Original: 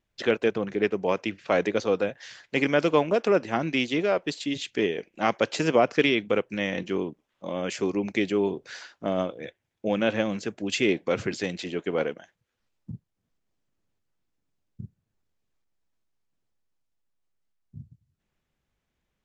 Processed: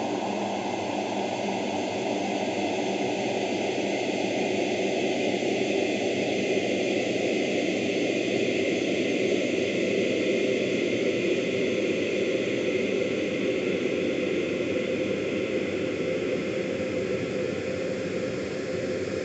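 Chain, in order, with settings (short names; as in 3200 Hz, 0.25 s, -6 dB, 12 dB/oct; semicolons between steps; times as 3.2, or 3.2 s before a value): rotary speaker horn 5.5 Hz; painted sound fall, 10.14–10.95, 460–1100 Hz -32 dBFS; Paulstretch 28×, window 1.00 s, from 10.53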